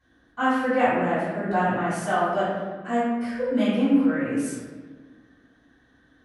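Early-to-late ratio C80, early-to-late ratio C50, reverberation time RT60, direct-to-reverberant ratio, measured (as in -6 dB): 0.5 dB, -2.0 dB, 1.4 s, -16.0 dB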